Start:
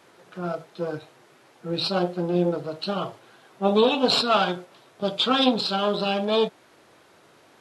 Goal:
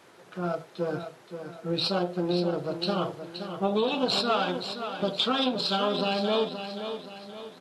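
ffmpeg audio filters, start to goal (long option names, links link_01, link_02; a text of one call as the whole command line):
ffmpeg -i in.wav -filter_complex "[0:a]acompressor=threshold=-23dB:ratio=4,asplit=2[link_01][link_02];[link_02]aecho=0:1:524|1048|1572|2096|2620:0.355|0.156|0.0687|0.0302|0.0133[link_03];[link_01][link_03]amix=inputs=2:normalize=0" out.wav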